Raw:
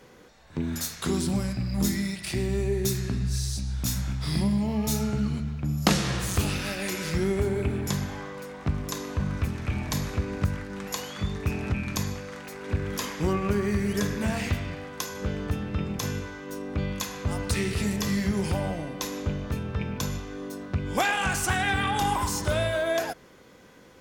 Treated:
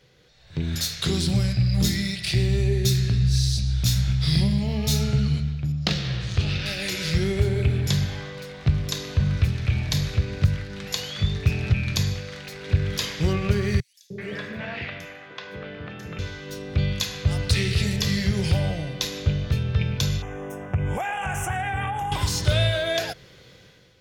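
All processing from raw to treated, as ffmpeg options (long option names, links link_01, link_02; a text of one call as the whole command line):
ffmpeg -i in.wav -filter_complex "[0:a]asettb=1/sr,asplit=3[link_01][link_02][link_03];[link_01]atrim=end=5.724[link_04];[link_02]atrim=start=5.72:end=6.66,asetpts=PTS-STARTPTS,afade=type=in:duration=0.004:curve=qsin,afade=type=out:start_time=0.936:duration=0.004:curve=qsin,lowpass=7600,adynamicsmooth=sensitivity=3:basefreq=4300[link_05];[link_03]atrim=start=6.656[link_06];[link_04][link_05]acrossfade=duration=0.004:curve1=hsin:curve2=qsin[link_07];[link_07][link_06]acrossfade=duration=0.004:curve1=qsin:curve2=hsin,asettb=1/sr,asplit=3[link_08][link_09][link_10];[link_08]atrim=end=13.804[link_11];[link_09]atrim=start=13.8:end=16.19,asetpts=PTS-STARTPTS,afade=type=in:duration=0.004:curve=qsin,afade=type=out:start_time=2.386:duration=0.004:curve=qsin,acrossover=split=210 2600:gain=0.0708 1 0.112[link_12][link_13][link_14];[link_12][link_13][link_14]amix=inputs=3:normalize=0,bandreject=frequency=50:width_type=h:width=6,bandreject=frequency=100:width_type=h:width=6,bandreject=frequency=150:width_type=h:width=6,bandreject=frequency=200:width_type=h:width=6,bandreject=frequency=250:width_type=h:width=6,bandreject=frequency=300:width_type=h:width=6,bandreject=frequency=350:width_type=h:width=6,bandreject=frequency=400:width_type=h:width=6,acrossover=split=520|5600[link_15][link_16][link_17];[link_15]adelay=300[link_18];[link_16]adelay=380[link_19];[link_18][link_19][link_17]amix=inputs=3:normalize=0,atrim=end_sample=105399[link_20];[link_10]atrim=start=16.186[link_21];[link_11][link_20]acrossfade=duration=0.004:curve1=hsin:curve2=qsin[link_22];[link_22][link_21]acrossfade=duration=0.004:curve1=qsin:curve2=hsin,asettb=1/sr,asplit=3[link_23][link_24][link_25];[link_23]atrim=end=20.224[link_26];[link_24]atrim=start=20.22:end=22.12,asetpts=PTS-STARTPTS,afade=type=in:duration=0.004:curve=qsin,afade=type=out:start_time=1.896:duration=0.004:curve=qsin,equalizer=frequency=830:width_type=o:width=0.87:gain=12.5,acompressor=threshold=-25dB:ratio=5:attack=3.2:release=140:knee=1:detection=peak,asuperstop=centerf=4300:order=4:qfactor=0.97[link_27];[link_25]atrim=start=22.116[link_28];[link_26][link_27]acrossfade=duration=0.004:curve1=hsin:curve2=qsin[link_29];[link_29][link_28]acrossfade=duration=0.004:curve1=qsin:curve2=hsin,equalizer=frequency=125:width_type=o:width=1:gain=8,equalizer=frequency=250:width_type=o:width=1:gain=-11,equalizer=frequency=1000:width_type=o:width=1:gain=-10,equalizer=frequency=4000:width_type=o:width=1:gain=8,equalizer=frequency=8000:width_type=o:width=1:gain=-4,equalizer=frequency=16000:width_type=o:width=1:gain=-6,dynaudnorm=framelen=130:gausssize=7:maxgain=10dB,volume=-4.5dB" out.wav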